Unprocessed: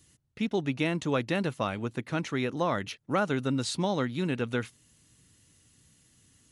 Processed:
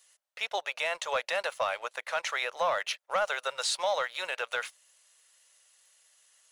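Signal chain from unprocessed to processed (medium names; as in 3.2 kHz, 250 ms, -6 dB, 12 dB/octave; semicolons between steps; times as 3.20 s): elliptic high-pass 560 Hz, stop band 50 dB; waveshaping leveller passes 1; peak limiter -24 dBFS, peak gain reduction 6.5 dB; trim +3.5 dB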